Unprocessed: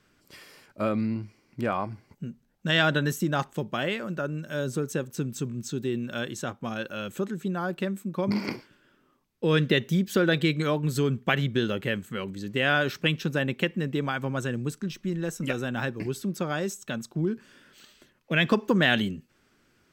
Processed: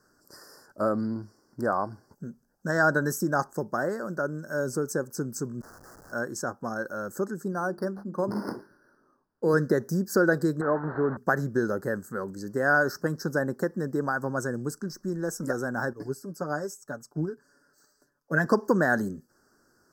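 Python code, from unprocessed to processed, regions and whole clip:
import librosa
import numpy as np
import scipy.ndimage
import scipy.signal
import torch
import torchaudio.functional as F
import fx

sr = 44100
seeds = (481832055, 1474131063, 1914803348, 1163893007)

y = fx.chain(x, sr, fx.delta_mod(bps=16000, step_db=-40.0),
    fx.steep_highpass(hz=1100.0, slope=72),
    fx.schmitt(flips_db=-47.5), at=(5.61, 6.12))
y = fx.chain(y, sr, fx.hum_notches(base_hz=50, count=8),
    fx.resample_linear(factor=6), at=(7.52, 9.54))
y = fx.chain(y, sr, fx.delta_mod(bps=16000, step_db=-28.0),
    fx.low_shelf(hz=110.0, db=-10.5), at=(10.61, 11.17))
y = fx.chain(y, sr, fx.comb(ms=7.0, depth=0.63),
    fx.upward_expand(threshold_db=-39.0, expansion=1.5), at=(15.93, 18.45))
y = scipy.signal.sosfilt(scipy.signal.ellip(3, 1.0, 40, [1600.0, 4900.0], 'bandstop', fs=sr, output='sos'), y)
y = fx.bass_treble(y, sr, bass_db=-8, treble_db=1)
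y = y * 10.0 ** (3.0 / 20.0)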